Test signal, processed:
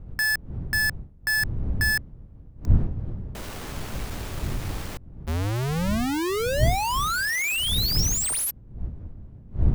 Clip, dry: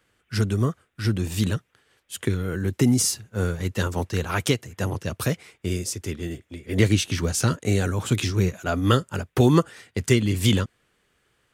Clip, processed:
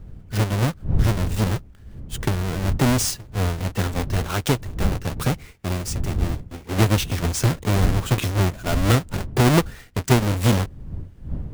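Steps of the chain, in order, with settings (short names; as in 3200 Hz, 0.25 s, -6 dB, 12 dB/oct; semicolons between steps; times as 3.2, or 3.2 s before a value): half-waves squared off; wind noise 93 Hz -25 dBFS; gain -3.5 dB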